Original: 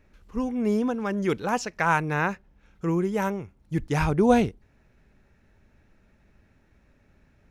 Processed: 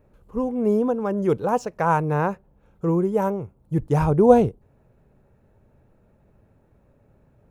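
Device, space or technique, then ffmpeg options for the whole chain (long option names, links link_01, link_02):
exciter from parts: -filter_complex "[0:a]asplit=2[link_01][link_02];[link_02]highpass=2100,asoftclip=type=tanh:threshold=-39.5dB,highpass=frequency=4800:width=0.5412,highpass=frequency=4800:width=1.3066,volume=-5dB[link_03];[link_01][link_03]amix=inputs=2:normalize=0,equalizer=frequency=125:width_type=o:width=1:gain=9,equalizer=frequency=500:width_type=o:width=1:gain=9,equalizer=frequency=1000:width_type=o:width=1:gain=5,equalizer=frequency=2000:width_type=o:width=1:gain=-8,equalizer=frequency=4000:width_type=o:width=1:gain=-6,volume=-2dB"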